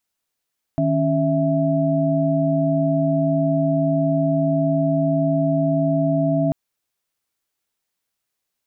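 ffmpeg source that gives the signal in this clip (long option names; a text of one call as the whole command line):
ffmpeg -f lavfi -i "aevalsrc='0.0944*(sin(2*PI*155.56*t)+sin(2*PI*277.18*t)+sin(2*PI*659.26*t))':duration=5.74:sample_rate=44100" out.wav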